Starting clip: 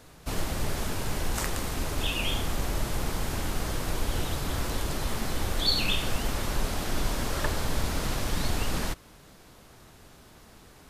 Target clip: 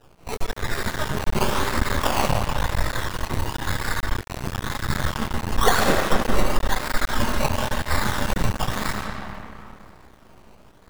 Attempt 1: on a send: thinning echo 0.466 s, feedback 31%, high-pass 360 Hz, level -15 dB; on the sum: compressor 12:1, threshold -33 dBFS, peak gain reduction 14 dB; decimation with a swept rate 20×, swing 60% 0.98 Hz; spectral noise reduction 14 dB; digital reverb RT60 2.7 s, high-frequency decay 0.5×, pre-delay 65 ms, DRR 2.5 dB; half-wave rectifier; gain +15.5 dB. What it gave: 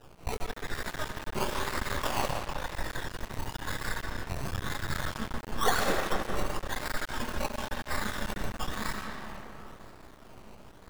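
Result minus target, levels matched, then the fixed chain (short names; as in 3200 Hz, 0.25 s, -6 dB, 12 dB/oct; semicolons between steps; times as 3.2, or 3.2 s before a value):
compressor: peak gain reduction +8 dB
on a send: thinning echo 0.466 s, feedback 31%, high-pass 360 Hz, level -15 dB; on the sum: compressor 12:1, threshold -24.5 dBFS, peak gain reduction 6.5 dB; decimation with a swept rate 20×, swing 60% 0.98 Hz; spectral noise reduction 14 dB; digital reverb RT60 2.7 s, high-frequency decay 0.5×, pre-delay 65 ms, DRR 2.5 dB; half-wave rectifier; gain +15.5 dB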